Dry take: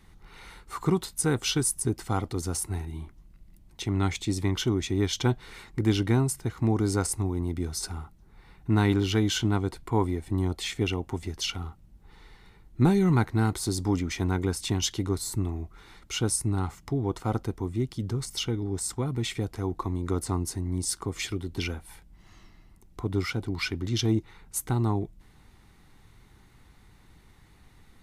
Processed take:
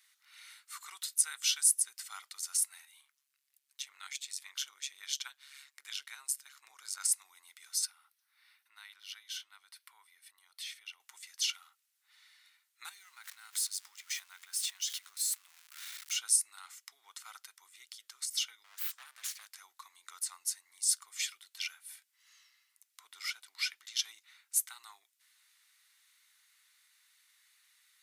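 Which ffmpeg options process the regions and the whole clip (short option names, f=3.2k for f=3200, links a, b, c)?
-filter_complex "[0:a]asettb=1/sr,asplit=3[a][b][c];[a]atrim=end=3.014[d];[b]atrim=start=3.01:end=7.01,asetpts=PTS-STARTPTS,afade=t=in:d=0.004:c=qsin,afade=t=out:st=3.996:d=0.004:c=qsin,bandreject=f=2k:w=21,tremolo=f=140:d=0.71[e];[c]atrim=start=7.006[f];[d][e]acrossfade=d=0.004:c1=hsin:c2=qsin[g];[g][f]acrossfade=d=0.004:c1=qsin:c2=hsin,asettb=1/sr,asplit=3[h][i][j];[h]atrim=end=7.854[k];[i]atrim=start=7.85:end=11,asetpts=PTS-STARTPTS,afade=t=in:d=0.004:c=qsin,afade=t=out:st=3.146:d=0.004:c=qsin,equalizer=f=7.2k:w=5.7:g=-14,acompressor=threshold=-42dB:ratio=2:attack=3.2:release=140:knee=1:detection=peak[l];[j]atrim=start=10.996[m];[k][l]acrossfade=d=0.004:c1=hsin:c2=qsin[n];[n][m]acrossfade=d=0.004:c1=qsin:c2=hsin,asettb=1/sr,asplit=3[o][p][q];[o]atrim=end=12.894[r];[p]atrim=start=12.89:end=16.16,asetpts=PTS-STARTPTS,afade=t=in:d=0.004:c=qsin,afade=t=out:st=3.266:d=0.004:c=qsin,aeval=exprs='val(0)+0.5*0.0141*sgn(val(0))':c=same,acompressor=threshold=-29dB:ratio=12:attack=3.2:release=140:knee=1:detection=peak[s];[q]atrim=start=16.156[t];[r][s]acrossfade=d=0.004:c1=hsin:c2=qsin[u];[u][t]acrossfade=d=0.004:c1=qsin:c2=hsin,asettb=1/sr,asplit=3[v][w][x];[v]atrim=end=18.644[y];[w]atrim=start=18.64:end=19.52,asetpts=PTS-STARTPTS,afade=t=in:d=0.004:c=qsin,afade=t=out:st=0.876:d=0.004:c=qsin,aeval=exprs='abs(val(0))':c=same,highpass=440[z];[x]atrim=start=19.516[aa];[y][z]acrossfade=d=0.004:c1=hsin:c2=qsin[ab];[ab][aa]acrossfade=d=0.004:c1=qsin:c2=hsin,highpass=f=1.4k:w=0.5412,highpass=f=1.4k:w=1.3066,highshelf=f=3k:g=12,volume=-9dB"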